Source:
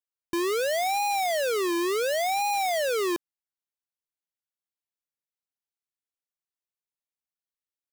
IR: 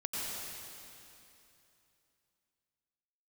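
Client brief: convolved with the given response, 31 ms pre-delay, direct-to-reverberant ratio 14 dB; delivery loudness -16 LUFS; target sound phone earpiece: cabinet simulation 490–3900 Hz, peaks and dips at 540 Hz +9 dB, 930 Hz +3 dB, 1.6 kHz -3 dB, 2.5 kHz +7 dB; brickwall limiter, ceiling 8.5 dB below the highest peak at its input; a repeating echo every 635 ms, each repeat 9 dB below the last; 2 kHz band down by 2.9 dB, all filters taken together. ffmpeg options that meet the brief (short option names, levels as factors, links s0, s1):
-filter_complex "[0:a]equalizer=f=2000:t=o:g=-7.5,alimiter=level_in=2.99:limit=0.0631:level=0:latency=1,volume=0.335,aecho=1:1:635|1270|1905|2540:0.355|0.124|0.0435|0.0152,asplit=2[s0][s1];[1:a]atrim=start_sample=2205,adelay=31[s2];[s1][s2]afir=irnorm=-1:irlink=0,volume=0.126[s3];[s0][s3]amix=inputs=2:normalize=0,highpass=490,equalizer=f=540:t=q:w=4:g=9,equalizer=f=930:t=q:w=4:g=3,equalizer=f=1600:t=q:w=4:g=-3,equalizer=f=2500:t=q:w=4:g=7,lowpass=f=3900:w=0.5412,lowpass=f=3900:w=1.3066,volume=7.94"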